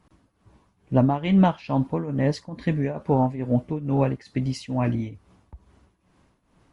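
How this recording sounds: tremolo triangle 2.3 Hz, depth 85%; MP2

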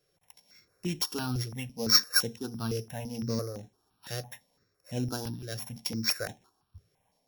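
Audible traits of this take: a buzz of ramps at a fixed pitch in blocks of 8 samples; tremolo triangle 1.6 Hz, depth 50%; notches that jump at a steady rate 5.9 Hz 240–4700 Hz

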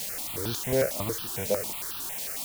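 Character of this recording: chopped level 3 Hz, depth 60%, duty 65%; a quantiser's noise floor 6-bit, dither triangular; notches that jump at a steady rate 11 Hz 330–2100 Hz

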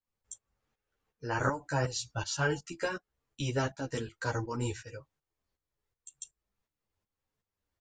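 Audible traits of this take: tremolo saw up 2.7 Hz, depth 75%; a shimmering, thickened sound

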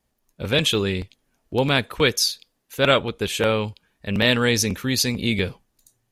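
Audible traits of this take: noise floor -73 dBFS; spectral tilt -3.5 dB/oct

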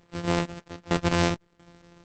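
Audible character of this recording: a buzz of ramps at a fixed pitch in blocks of 256 samples; random-step tremolo 4.4 Hz, depth 85%; Opus

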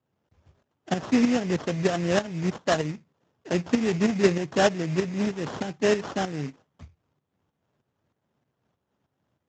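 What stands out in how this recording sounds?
a buzz of ramps at a fixed pitch in blocks of 8 samples; tremolo saw up 3.2 Hz, depth 65%; aliases and images of a low sample rate 2300 Hz, jitter 20%; Speex

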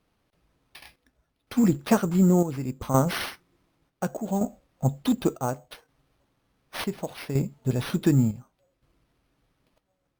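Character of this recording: chopped level 0.68 Hz, depth 60%, duty 65%; aliases and images of a low sample rate 7300 Hz, jitter 0%; Vorbis

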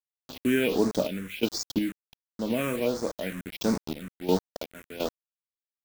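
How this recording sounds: a quantiser's noise floor 6-bit, dither none; phasing stages 4, 1.4 Hz, lowest notch 750–2900 Hz; random-step tremolo 2.8 Hz, depth 75%

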